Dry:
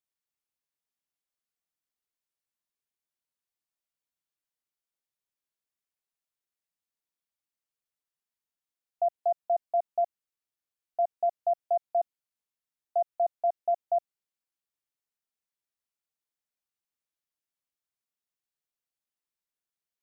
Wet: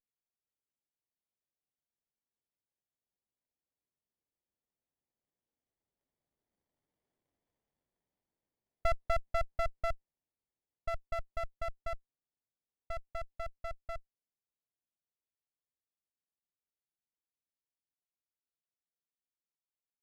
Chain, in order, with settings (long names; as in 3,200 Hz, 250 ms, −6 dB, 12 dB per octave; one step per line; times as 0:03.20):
source passing by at 0:07.24, 10 m/s, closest 8.4 metres
windowed peak hold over 33 samples
level +8.5 dB